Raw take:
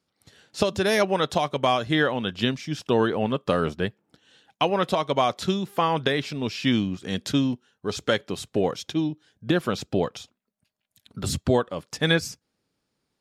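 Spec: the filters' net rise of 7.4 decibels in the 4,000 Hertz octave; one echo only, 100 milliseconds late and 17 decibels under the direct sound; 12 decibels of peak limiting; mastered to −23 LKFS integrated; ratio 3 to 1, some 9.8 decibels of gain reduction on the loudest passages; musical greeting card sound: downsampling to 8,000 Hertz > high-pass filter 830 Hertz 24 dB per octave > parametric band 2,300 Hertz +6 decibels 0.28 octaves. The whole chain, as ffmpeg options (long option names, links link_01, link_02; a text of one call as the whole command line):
ffmpeg -i in.wav -af "equalizer=frequency=4000:width_type=o:gain=9,acompressor=threshold=-29dB:ratio=3,alimiter=limit=-23.5dB:level=0:latency=1,aecho=1:1:100:0.141,aresample=8000,aresample=44100,highpass=frequency=830:width=0.5412,highpass=frequency=830:width=1.3066,equalizer=frequency=2300:width_type=o:width=0.28:gain=6,volume=16dB" out.wav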